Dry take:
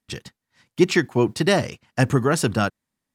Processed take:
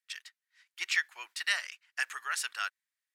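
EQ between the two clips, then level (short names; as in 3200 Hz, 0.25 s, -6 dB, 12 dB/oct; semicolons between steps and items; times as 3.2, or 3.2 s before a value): ladder high-pass 1400 Hz, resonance 35%; 0.0 dB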